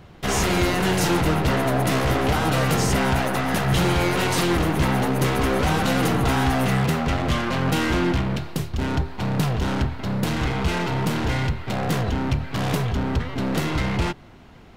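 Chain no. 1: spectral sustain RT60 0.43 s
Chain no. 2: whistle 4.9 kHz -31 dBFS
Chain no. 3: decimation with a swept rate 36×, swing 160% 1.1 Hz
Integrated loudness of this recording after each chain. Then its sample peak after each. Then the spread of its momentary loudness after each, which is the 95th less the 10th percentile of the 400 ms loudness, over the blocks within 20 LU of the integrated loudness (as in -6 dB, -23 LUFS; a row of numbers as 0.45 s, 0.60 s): -21.0 LUFS, -22.0 LUFS, -22.5 LUFS; -9.5 dBFS, -11.5 dBFS, -12.0 dBFS; 5 LU, 5 LU, 5 LU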